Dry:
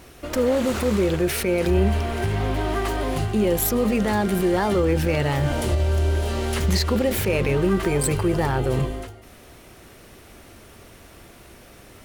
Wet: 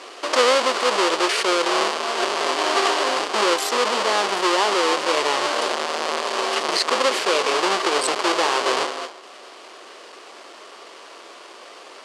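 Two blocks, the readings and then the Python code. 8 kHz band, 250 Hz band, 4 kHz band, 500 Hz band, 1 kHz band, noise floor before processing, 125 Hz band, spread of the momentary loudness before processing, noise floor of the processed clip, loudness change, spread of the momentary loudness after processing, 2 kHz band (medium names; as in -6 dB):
+4.0 dB, -7.5 dB, +11.5 dB, +1.0 dB, +9.0 dB, -47 dBFS, under -30 dB, 4 LU, -43 dBFS, +2.0 dB, 5 LU, +7.5 dB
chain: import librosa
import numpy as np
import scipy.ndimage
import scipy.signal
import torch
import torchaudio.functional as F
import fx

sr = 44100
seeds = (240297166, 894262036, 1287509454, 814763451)

y = fx.halfwave_hold(x, sr)
y = fx.rider(y, sr, range_db=10, speed_s=0.5)
y = fx.cabinet(y, sr, low_hz=400.0, low_slope=24, high_hz=8700.0, hz=(1100.0, 3000.0, 4600.0), db=(7, 5, 6))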